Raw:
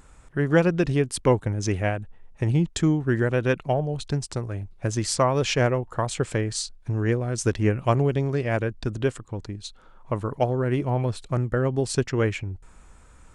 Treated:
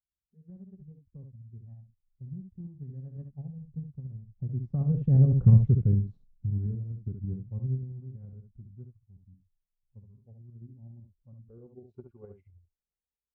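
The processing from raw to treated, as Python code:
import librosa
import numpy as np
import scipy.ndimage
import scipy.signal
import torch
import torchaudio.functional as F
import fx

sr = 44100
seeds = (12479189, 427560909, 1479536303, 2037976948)

p1 = fx.doppler_pass(x, sr, speed_mps=30, closest_m=2.5, pass_at_s=5.46)
p2 = fx.noise_reduce_blind(p1, sr, reduce_db=22)
p3 = fx.leveller(p2, sr, passes=1)
p4 = fx.level_steps(p3, sr, step_db=12)
p5 = p3 + (p4 * 10.0 ** (1.5 / 20.0))
p6 = fx.fold_sine(p5, sr, drive_db=9, ceiling_db=-6.5)
p7 = fx.notch_comb(p6, sr, f0_hz=320.0)
p8 = fx.tremolo_shape(p7, sr, shape='saw_up', hz=12.0, depth_pct=45)
p9 = fx.filter_sweep_lowpass(p8, sr, from_hz=160.0, to_hz=590.0, start_s=10.42, end_s=12.07, q=1.5)
p10 = p9 + fx.room_early_taps(p9, sr, ms=(54, 69), db=(-15.5, -7.0), dry=0)
y = p10 * 10.0 ** (-3.0 / 20.0)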